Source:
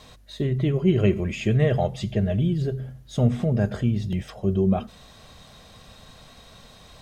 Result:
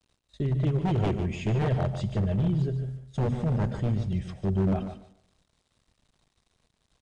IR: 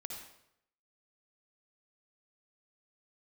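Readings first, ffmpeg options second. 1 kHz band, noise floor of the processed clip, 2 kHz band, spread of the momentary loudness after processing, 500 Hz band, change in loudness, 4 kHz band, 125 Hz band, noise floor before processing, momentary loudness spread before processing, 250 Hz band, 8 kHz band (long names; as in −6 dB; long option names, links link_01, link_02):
−1.0 dB, −77 dBFS, −6.5 dB, 6 LU, −7.0 dB, −4.0 dB, −7.5 dB, −3.0 dB, −49 dBFS, 9 LU, −5.0 dB, can't be measured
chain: -filter_complex "[0:a]agate=range=-21dB:threshold=-39dB:ratio=16:detection=peak,lowshelf=frequency=180:gain=9,aeval=exprs='0.237*(abs(mod(val(0)/0.237+3,4)-2)-1)':channel_layout=same,acrusher=bits=9:mix=0:aa=0.000001,aecho=1:1:146|292|438:0.335|0.0603|0.0109,asplit=2[link_01][link_02];[1:a]atrim=start_sample=2205,asetrate=39249,aresample=44100[link_03];[link_02][link_03]afir=irnorm=-1:irlink=0,volume=-15.5dB[link_04];[link_01][link_04]amix=inputs=2:normalize=0,aresample=22050,aresample=44100,volume=-8.5dB"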